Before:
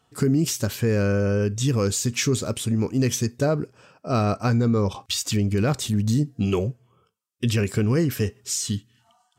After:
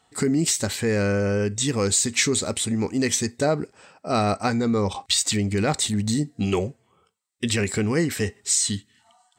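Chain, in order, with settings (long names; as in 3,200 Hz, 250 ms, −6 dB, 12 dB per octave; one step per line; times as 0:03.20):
thirty-one-band graphic EQ 125 Hz −12 dB, 800 Hz +7 dB, 2,000 Hz +10 dB, 4,000 Hz +8 dB, 8,000 Hz +11 dB, 12,500 Hz −8 dB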